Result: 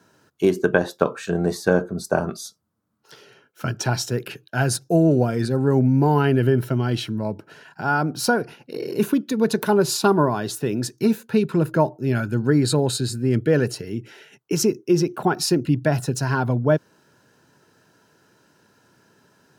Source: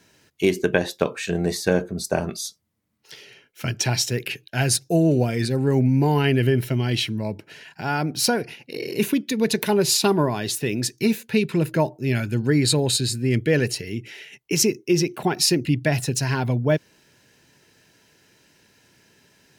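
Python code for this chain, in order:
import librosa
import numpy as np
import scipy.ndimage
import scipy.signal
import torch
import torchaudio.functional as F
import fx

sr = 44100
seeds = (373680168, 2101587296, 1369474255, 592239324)

y = scipy.signal.sosfilt(scipy.signal.butter(2, 95.0, 'highpass', fs=sr, output='sos'), x)
y = fx.high_shelf_res(y, sr, hz=1700.0, db=-6.0, q=3.0)
y = y * 10.0 ** (1.5 / 20.0)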